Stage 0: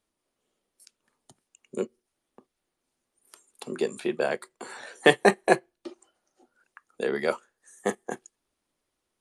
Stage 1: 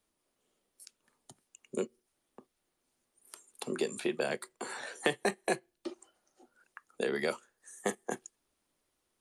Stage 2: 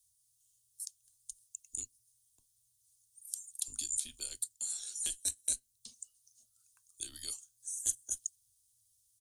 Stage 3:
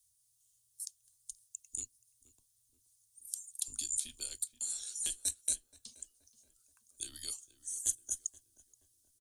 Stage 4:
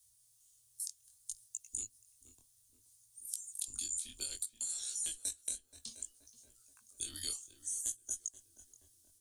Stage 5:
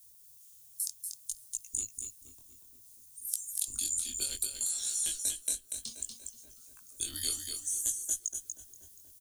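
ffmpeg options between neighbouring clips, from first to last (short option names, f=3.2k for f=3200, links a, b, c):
-filter_complex "[0:a]highshelf=f=9.3k:g=4.5,acrossover=split=330|2200[a][b][c];[a]acompressor=threshold=-37dB:ratio=4[d];[b]acompressor=threshold=-33dB:ratio=4[e];[c]acompressor=threshold=-37dB:ratio=4[f];[d][e][f]amix=inputs=3:normalize=0"
-af "firequalizer=gain_entry='entry(110,0);entry(250,-29);entry(2100,-25);entry(3400,-3);entry(6700,12)':delay=0.05:min_phase=1,afreqshift=-120"
-filter_complex "[0:a]asplit=2[a][b];[b]adelay=477,lowpass=f=1.7k:p=1,volume=-15dB,asplit=2[c][d];[d]adelay=477,lowpass=f=1.7k:p=1,volume=0.49,asplit=2[e][f];[f]adelay=477,lowpass=f=1.7k:p=1,volume=0.49,asplit=2[g][h];[h]adelay=477,lowpass=f=1.7k:p=1,volume=0.49,asplit=2[i][j];[j]adelay=477,lowpass=f=1.7k:p=1,volume=0.49[k];[a][c][e][g][i][k]amix=inputs=6:normalize=0"
-af "acompressor=threshold=-40dB:ratio=6,flanger=delay=16.5:depth=7.2:speed=0.62,volume=8dB"
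-af "aexciter=amount=4.1:drive=2.6:freq=12k,aecho=1:1:239:0.531,volume=5.5dB"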